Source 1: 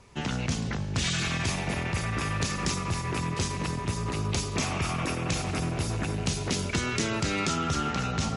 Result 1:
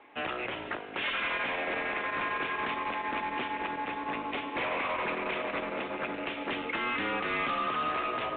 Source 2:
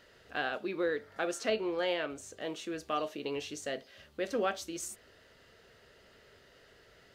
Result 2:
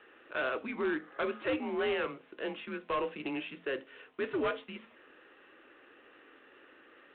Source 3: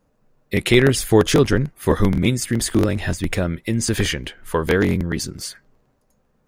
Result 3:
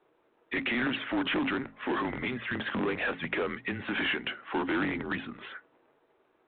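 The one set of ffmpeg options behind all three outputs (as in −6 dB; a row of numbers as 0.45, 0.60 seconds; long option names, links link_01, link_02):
-af "bandreject=frequency=50:width_type=h:width=6,bandreject=frequency=100:width_type=h:width=6,bandreject=frequency=150:width_type=h:width=6,bandreject=frequency=200:width_type=h:width=6,bandreject=frequency=250:width_type=h:width=6,bandreject=frequency=300:width_type=h:width=6,bandreject=frequency=350:width_type=h:width=6,bandreject=frequency=400:width_type=h:width=6,alimiter=limit=-13dB:level=0:latency=1:release=47,highpass=frequency=440:width_type=q:width=0.5412,highpass=frequency=440:width_type=q:width=1.307,lowpass=frequency=3100:width_type=q:width=0.5176,lowpass=frequency=3100:width_type=q:width=0.7071,lowpass=frequency=3100:width_type=q:width=1.932,afreqshift=-130,asoftclip=type=tanh:threshold=-22dB,aeval=exprs='0.0794*(cos(1*acos(clip(val(0)/0.0794,-1,1)))-cos(1*PI/2))+0.0112*(cos(5*acos(clip(val(0)/0.0794,-1,1)))-cos(5*PI/2))':channel_layout=same" -ar 8000 -c:a adpcm_g726 -b:a 32k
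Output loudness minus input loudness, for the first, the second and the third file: −3.0, 0.0, −12.0 LU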